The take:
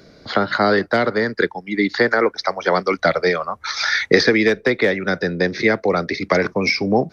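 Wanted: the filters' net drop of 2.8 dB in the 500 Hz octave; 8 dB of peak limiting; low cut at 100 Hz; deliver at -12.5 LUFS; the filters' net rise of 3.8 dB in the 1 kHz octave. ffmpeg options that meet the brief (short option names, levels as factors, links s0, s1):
-af "highpass=100,equalizer=f=500:t=o:g=-5,equalizer=f=1000:t=o:g=7,volume=2.37,alimiter=limit=1:level=0:latency=1"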